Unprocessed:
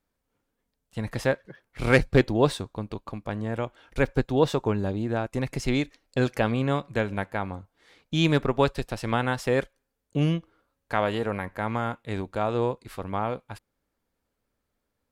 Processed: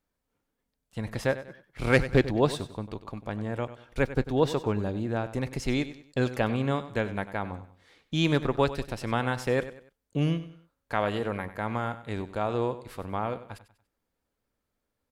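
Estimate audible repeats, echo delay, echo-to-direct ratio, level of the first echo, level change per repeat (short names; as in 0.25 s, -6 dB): 3, 96 ms, -13.5 dB, -14.0 dB, -9.0 dB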